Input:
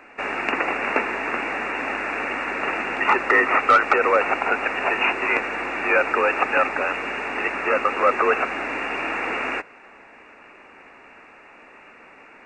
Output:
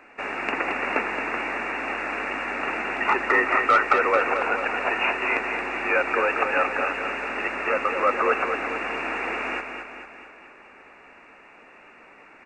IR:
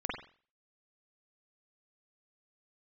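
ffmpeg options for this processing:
-af "aecho=1:1:222|444|666|888|1110|1332|1554:0.447|0.246|0.135|0.0743|0.0409|0.0225|0.0124,volume=-3.5dB"

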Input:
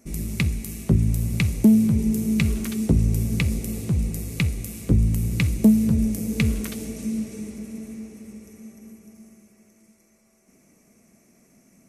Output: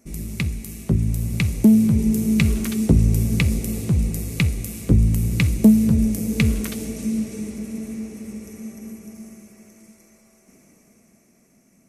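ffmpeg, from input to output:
ffmpeg -i in.wav -af "dynaudnorm=framelen=290:gausssize=11:maxgain=10dB,volume=-1.5dB" out.wav

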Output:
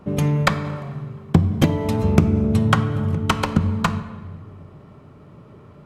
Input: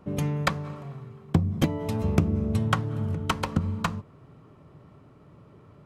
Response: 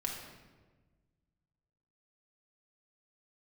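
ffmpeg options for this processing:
-filter_complex "[0:a]asplit=2[link_01][link_02];[1:a]atrim=start_sample=2205,asetrate=36603,aresample=44100,highshelf=frequency=9600:gain=-11.5[link_03];[link_02][link_03]afir=irnorm=-1:irlink=0,volume=-9.5dB[link_04];[link_01][link_04]amix=inputs=2:normalize=0,volume=4.5dB"

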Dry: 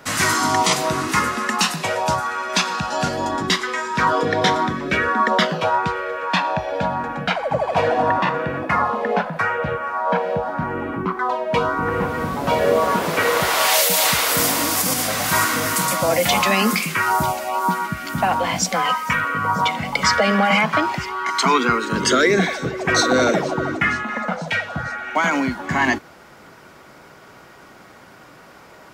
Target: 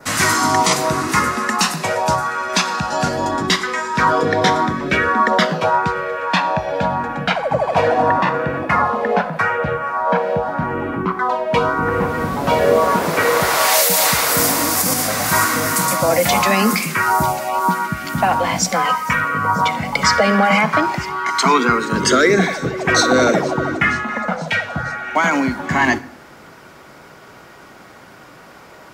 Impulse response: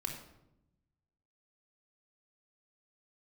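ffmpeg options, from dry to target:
-filter_complex "[0:a]adynamicequalizer=threshold=0.0126:dfrequency=3100:dqfactor=2:tfrequency=3100:tqfactor=2:attack=5:release=100:ratio=0.375:range=3:mode=cutabove:tftype=bell,asplit=2[link_01][link_02];[1:a]atrim=start_sample=2205,adelay=63[link_03];[link_02][link_03]afir=irnorm=-1:irlink=0,volume=-19dB[link_04];[link_01][link_04]amix=inputs=2:normalize=0,volume=3dB"

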